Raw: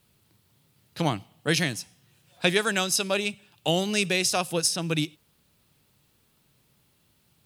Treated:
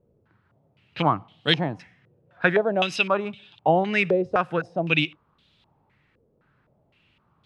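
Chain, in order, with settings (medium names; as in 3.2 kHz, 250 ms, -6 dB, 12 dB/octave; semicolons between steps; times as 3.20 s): step-sequenced low-pass 3.9 Hz 500–3500 Hz; trim +1 dB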